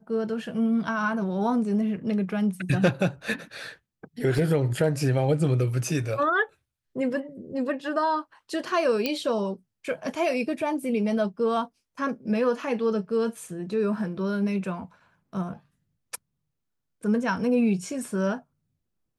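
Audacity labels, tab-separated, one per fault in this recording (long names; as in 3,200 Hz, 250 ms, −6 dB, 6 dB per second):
4.380000	4.380000	drop-out 2.6 ms
9.060000	9.060000	click −12 dBFS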